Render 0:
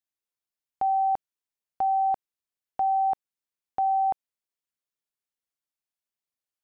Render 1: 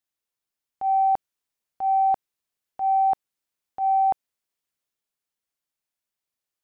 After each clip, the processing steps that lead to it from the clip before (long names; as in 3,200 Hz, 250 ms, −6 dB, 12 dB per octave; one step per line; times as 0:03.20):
transient designer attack −10 dB, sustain +2 dB
level +4 dB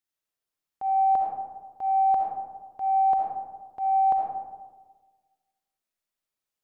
comb and all-pass reverb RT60 1.4 s, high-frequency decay 0.35×, pre-delay 25 ms, DRR −1 dB
level −3.5 dB